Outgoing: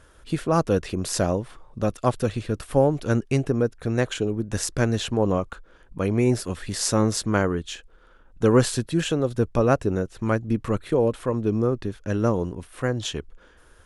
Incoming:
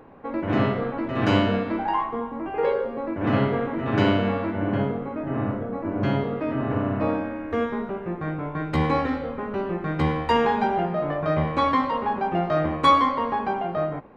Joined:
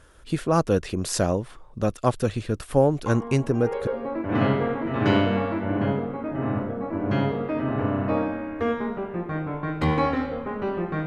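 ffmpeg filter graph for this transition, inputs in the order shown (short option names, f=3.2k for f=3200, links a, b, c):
-filter_complex "[1:a]asplit=2[a][b];[0:a]apad=whole_dur=11.06,atrim=end=11.06,atrim=end=3.872[c];[b]atrim=start=2.788:end=9.98[d];[a]atrim=start=1.98:end=2.79,asetpts=PTS-STARTPTS,volume=-7.5dB,afade=t=in:d=0.004:c=hsin,afade=t=out:st=0.806:d=0.004:c=hsin,adelay=3060[e];[c][d]acrossfade=d=0.004:c1=hsin:c2=hsin[f];[f][e]amix=inputs=2:normalize=0"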